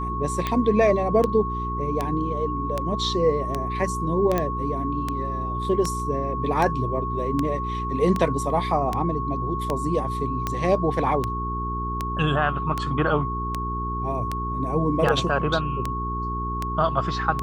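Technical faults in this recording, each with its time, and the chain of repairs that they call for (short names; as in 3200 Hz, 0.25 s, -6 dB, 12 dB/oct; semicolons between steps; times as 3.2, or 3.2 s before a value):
hum 60 Hz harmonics 7 -30 dBFS
tick 78 rpm -11 dBFS
tone 1100 Hz -28 dBFS
4.38 pop -10 dBFS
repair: de-click; de-hum 60 Hz, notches 7; notch 1100 Hz, Q 30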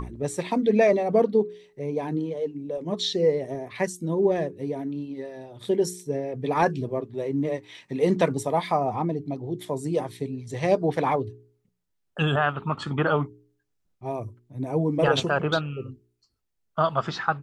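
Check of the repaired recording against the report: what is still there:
none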